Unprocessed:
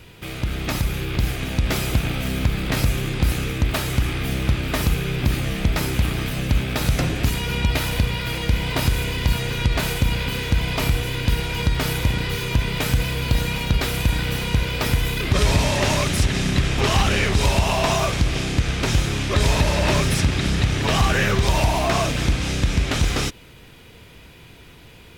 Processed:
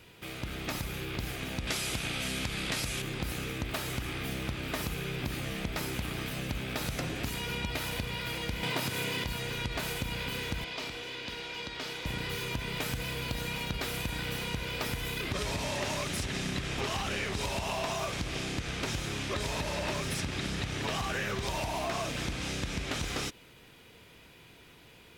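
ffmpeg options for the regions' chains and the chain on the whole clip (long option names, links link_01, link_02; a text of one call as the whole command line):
ffmpeg -i in.wav -filter_complex "[0:a]asettb=1/sr,asplit=3[link_01][link_02][link_03];[link_01]atrim=end=1.674[link_04];[link_02]atrim=start=1.67:end=3.02,asetpts=PTS-STARTPTS,afade=type=in:duration=0.004:curve=qsin,afade=type=out:start_time=1.346:duration=0.004:curve=qsin,lowpass=frequency=11000:width=0.5412,lowpass=frequency=11000:width=1.3066,highshelf=frequency=2000:gain=9.5,aeval=exprs='0.447*(abs(mod(val(0)/0.447+3,4)-2)-1)':channel_layout=same[link_05];[link_03]atrim=start=3.016[link_06];[link_04][link_05]acrossfade=duration=0.004:curve1=hsin:curve2=qsin[link_07];[link_07][link_06]acrossfade=duration=0.004:curve1=qsin:curve2=hsin,asettb=1/sr,asplit=3[link_08][link_09][link_10];[link_08]atrim=end=8.634[link_11];[link_09]atrim=start=8.63:end=9.24,asetpts=PTS-STARTPTS,afade=type=in:duration=0.004:curve=qsin,afade=type=out:start_time=0.606:duration=0.004:curve=qsin,highpass=frequency=110:width=0.5412,highpass=frequency=110:width=1.3066,acontrast=83[link_12];[link_10]atrim=start=9.236[link_13];[link_11][link_12]acrossfade=duration=0.004:curve1=hsin:curve2=qsin[link_14];[link_14][link_13]acrossfade=duration=0.004:curve1=qsin:curve2=hsin,asettb=1/sr,asplit=3[link_15][link_16][link_17];[link_15]atrim=end=10.644[link_18];[link_16]atrim=start=10.64:end=12.06,asetpts=PTS-STARTPTS,afade=type=in:duration=0.004:curve=qsin,afade=type=out:start_time=1.416:duration=0.004:curve=qsin,acrossover=split=280 6200:gain=0.141 1 0.126[link_19][link_20][link_21];[link_19][link_20][link_21]amix=inputs=3:normalize=0,acrossover=split=310|3000[link_22][link_23][link_24];[link_23]acompressor=threshold=-36dB:ratio=2:attack=3.2:release=140:knee=2.83:detection=peak[link_25];[link_22][link_25][link_24]amix=inputs=3:normalize=0[link_26];[link_17]atrim=start=12.056[link_27];[link_18][link_26]acrossfade=duration=0.004:curve1=hsin:curve2=qsin[link_28];[link_28][link_27]acrossfade=duration=0.004:curve1=qsin:curve2=hsin,lowshelf=frequency=120:gain=-10.5,acompressor=threshold=-22dB:ratio=6,volume=-7.5dB" out.wav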